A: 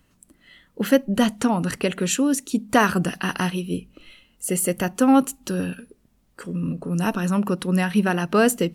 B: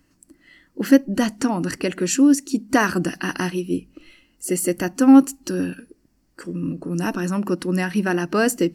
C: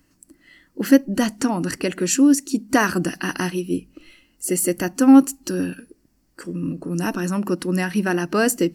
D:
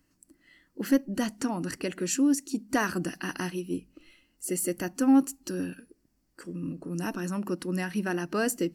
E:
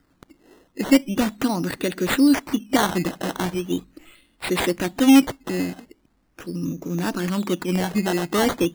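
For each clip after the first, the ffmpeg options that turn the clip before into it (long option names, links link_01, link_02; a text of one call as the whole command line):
ffmpeg -i in.wav -af "superequalizer=6b=2.82:11b=1.41:13b=0.631:14b=2:15b=1.41,volume=-2dB" out.wav
ffmpeg -i in.wav -af "highshelf=frequency=7600:gain=5" out.wav
ffmpeg -i in.wav -af "asoftclip=type=tanh:threshold=-3dB,volume=-8.5dB" out.wav
ffmpeg -i in.wav -af "acrusher=samples=13:mix=1:aa=0.000001:lfo=1:lforange=13:lforate=0.4,volume=7.5dB" out.wav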